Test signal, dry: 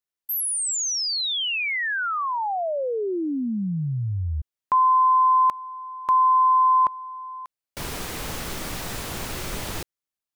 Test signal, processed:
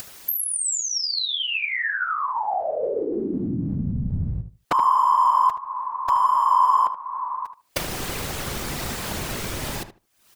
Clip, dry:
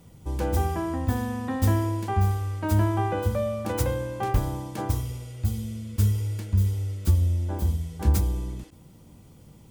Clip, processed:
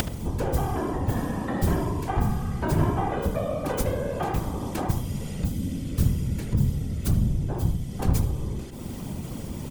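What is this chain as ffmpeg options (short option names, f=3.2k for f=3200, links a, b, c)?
-filter_complex "[0:a]aeval=exprs='0.188*(abs(mod(val(0)/0.188+3,4)-2)-1)':c=same,acompressor=mode=upward:threshold=-23dB:ratio=4:attack=18:release=366:knee=2.83:detection=peak,afftfilt=real='hypot(re,im)*cos(2*PI*random(0))':imag='hypot(re,im)*sin(2*PI*random(1))':win_size=512:overlap=0.75,asplit=2[a][b];[b]adelay=76,lowpass=f=2.1k:p=1,volume=-10dB,asplit=2[c][d];[d]adelay=76,lowpass=f=2.1k:p=1,volume=0.18,asplit=2[e][f];[f]adelay=76,lowpass=f=2.1k:p=1,volume=0.18[g];[c][e][g]amix=inputs=3:normalize=0[h];[a][h]amix=inputs=2:normalize=0,volume=5dB"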